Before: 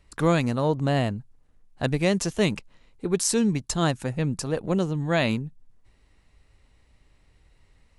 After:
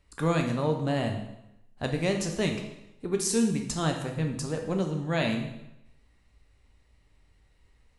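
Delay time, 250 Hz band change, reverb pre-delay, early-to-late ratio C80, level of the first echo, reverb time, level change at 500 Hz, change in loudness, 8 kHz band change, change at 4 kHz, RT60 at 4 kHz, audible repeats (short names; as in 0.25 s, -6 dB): none, -3.5 dB, 5 ms, 9.5 dB, none, 0.85 s, -3.5 dB, -4.0 dB, -3.5 dB, -3.5 dB, 0.80 s, none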